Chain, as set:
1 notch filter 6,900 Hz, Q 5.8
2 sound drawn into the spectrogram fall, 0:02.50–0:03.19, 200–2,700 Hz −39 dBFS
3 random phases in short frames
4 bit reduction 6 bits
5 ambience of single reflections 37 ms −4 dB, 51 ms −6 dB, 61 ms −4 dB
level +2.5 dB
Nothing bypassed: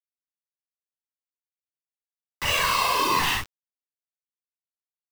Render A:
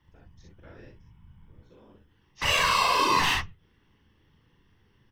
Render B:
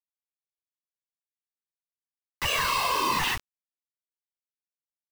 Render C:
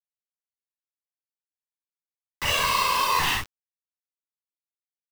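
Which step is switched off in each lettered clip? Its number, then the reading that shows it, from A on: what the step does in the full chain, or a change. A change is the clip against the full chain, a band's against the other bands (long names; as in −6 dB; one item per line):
4, distortion level −12 dB
5, echo-to-direct ratio 0.0 dB to none audible
2, 250 Hz band −5.0 dB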